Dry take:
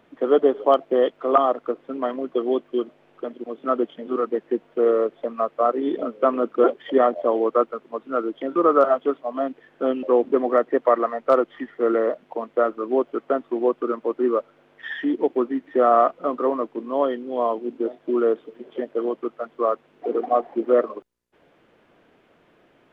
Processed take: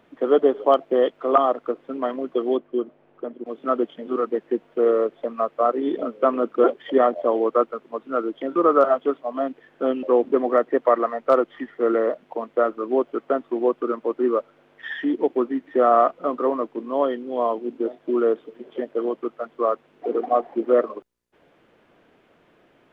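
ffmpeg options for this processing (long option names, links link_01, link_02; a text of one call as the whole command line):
ffmpeg -i in.wav -filter_complex "[0:a]asettb=1/sr,asplit=3[link_01][link_02][link_03];[link_01]atrim=end=2.574[link_04];[link_02]atrim=start=2.57:end=3.46,asetpts=PTS-STARTPTS,afade=type=in:duration=0.004:curve=qsin,afade=type=out:start_time=0.886:duration=0.004:curve=qsin,lowpass=frequency=1200:poles=1[link_05];[link_03]atrim=start=3.456[link_06];[link_04][link_05]acrossfade=duration=0.004:curve1=hsin:curve2=qsin[link_07];[link_07][link_06]acrossfade=duration=0.004:curve1=qsin:curve2=hsin" out.wav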